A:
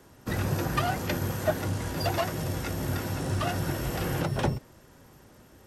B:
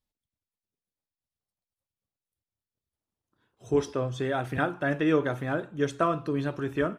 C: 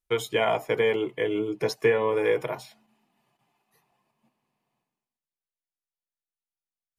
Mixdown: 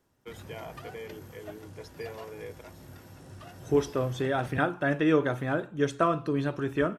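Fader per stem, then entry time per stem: −18.0, +0.5, −18.5 decibels; 0.00, 0.00, 0.15 seconds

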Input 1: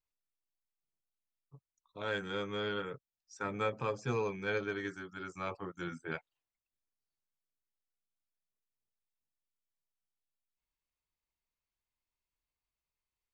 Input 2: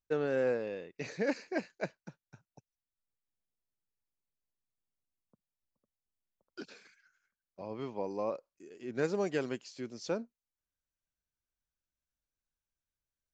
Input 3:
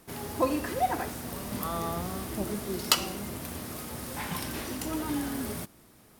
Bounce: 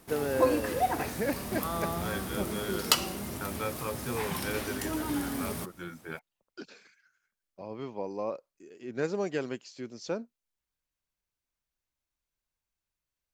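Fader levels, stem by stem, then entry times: −1.0, +1.0, −0.5 decibels; 0.00, 0.00, 0.00 seconds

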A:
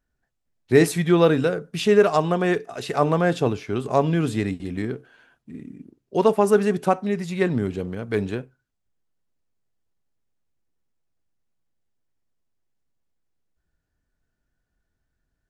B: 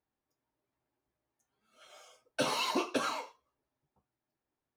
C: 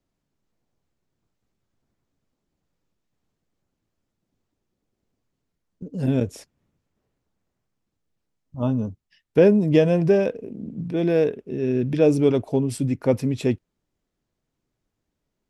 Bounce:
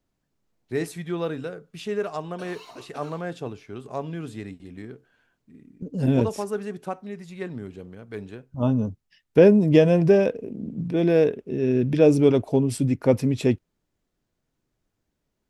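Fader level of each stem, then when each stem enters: −11.5, −14.0, +1.0 decibels; 0.00, 0.00, 0.00 seconds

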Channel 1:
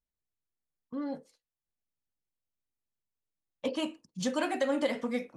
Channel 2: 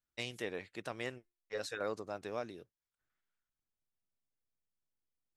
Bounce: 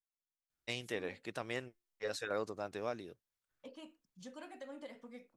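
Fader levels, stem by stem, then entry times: −19.5, +0.5 decibels; 0.00, 0.50 seconds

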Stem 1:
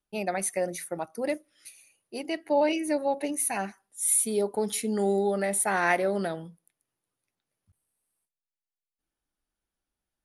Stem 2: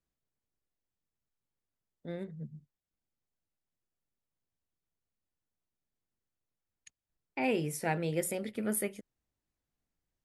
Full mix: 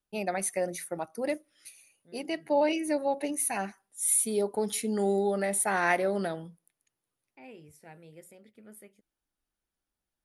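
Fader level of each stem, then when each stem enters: −1.5, −18.5 decibels; 0.00, 0.00 seconds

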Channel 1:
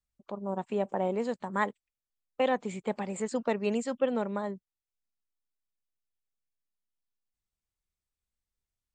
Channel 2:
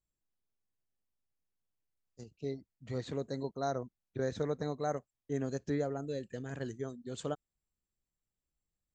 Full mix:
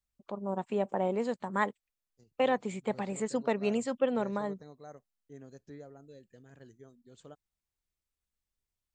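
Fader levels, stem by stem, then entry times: −0.5, −14.5 decibels; 0.00, 0.00 seconds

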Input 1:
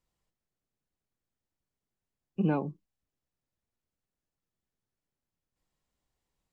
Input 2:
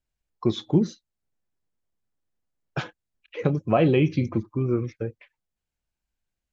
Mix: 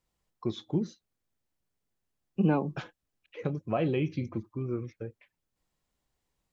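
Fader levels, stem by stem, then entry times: +2.5, −9.0 decibels; 0.00, 0.00 seconds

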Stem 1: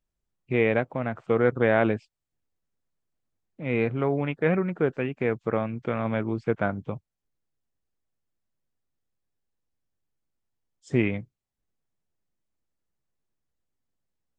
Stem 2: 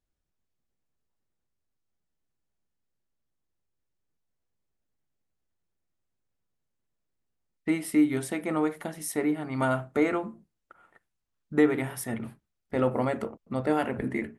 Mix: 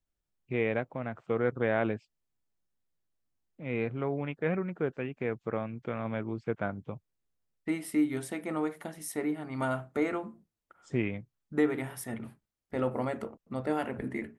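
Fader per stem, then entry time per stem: −7.0, −5.0 decibels; 0.00, 0.00 seconds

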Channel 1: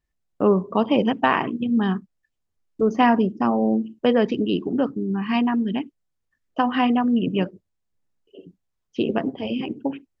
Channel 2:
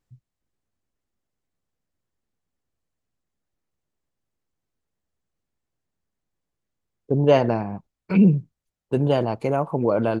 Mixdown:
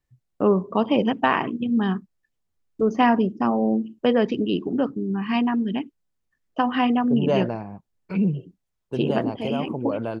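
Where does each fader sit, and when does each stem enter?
−1.0, −6.5 decibels; 0.00, 0.00 seconds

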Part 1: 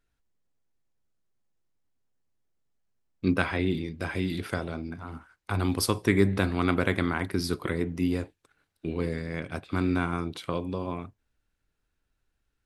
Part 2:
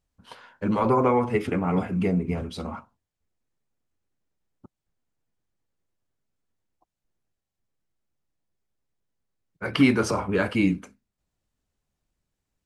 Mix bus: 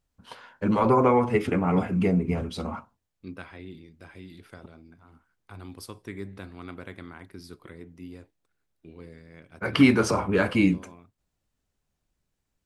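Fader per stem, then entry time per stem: −15.5, +1.0 decibels; 0.00, 0.00 seconds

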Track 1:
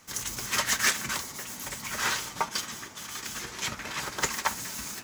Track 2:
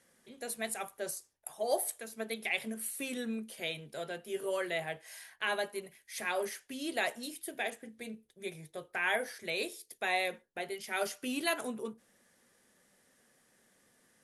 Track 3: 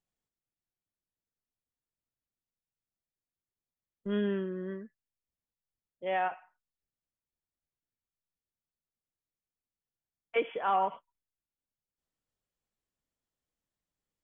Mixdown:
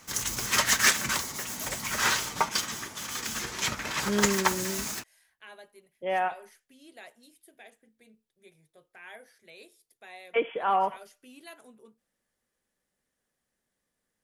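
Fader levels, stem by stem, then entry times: +3.0, −15.5, +3.0 decibels; 0.00, 0.00, 0.00 seconds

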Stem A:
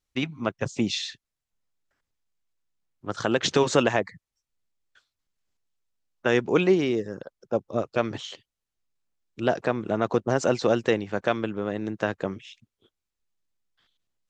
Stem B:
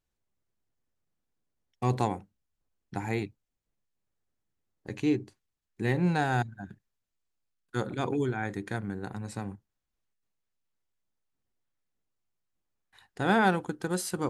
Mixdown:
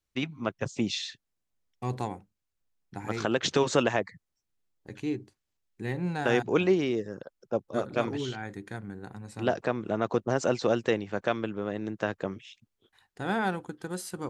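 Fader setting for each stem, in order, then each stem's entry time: −3.5, −5.0 decibels; 0.00, 0.00 seconds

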